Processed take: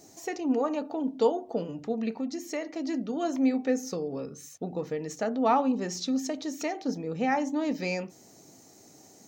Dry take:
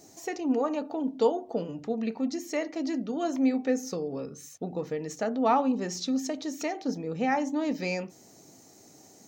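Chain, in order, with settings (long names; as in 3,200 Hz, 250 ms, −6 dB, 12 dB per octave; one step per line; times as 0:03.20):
0:02.11–0:02.89: downward compressor 2 to 1, threshold −31 dBFS, peak gain reduction 4.5 dB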